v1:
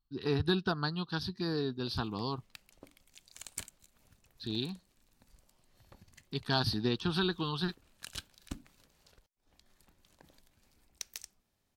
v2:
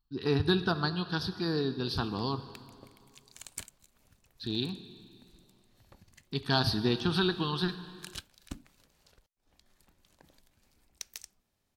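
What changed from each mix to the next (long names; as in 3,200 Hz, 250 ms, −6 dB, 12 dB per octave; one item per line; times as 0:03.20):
reverb: on, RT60 2.3 s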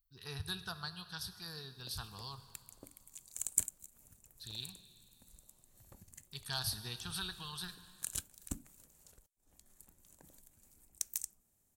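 speech: add guitar amp tone stack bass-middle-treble 10-0-10
master: add drawn EQ curve 190 Hz 0 dB, 3,000 Hz −7 dB, 4,900 Hz −6 dB, 7,400 Hz +11 dB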